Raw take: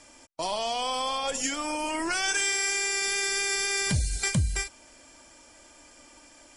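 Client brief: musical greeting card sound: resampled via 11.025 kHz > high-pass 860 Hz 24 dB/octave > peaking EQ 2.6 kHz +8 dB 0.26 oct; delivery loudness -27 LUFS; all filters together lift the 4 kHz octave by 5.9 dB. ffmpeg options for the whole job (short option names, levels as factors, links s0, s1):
-af "equalizer=f=4000:t=o:g=7,aresample=11025,aresample=44100,highpass=f=860:w=0.5412,highpass=f=860:w=1.3066,equalizer=f=2600:t=o:w=0.26:g=8,volume=0.794"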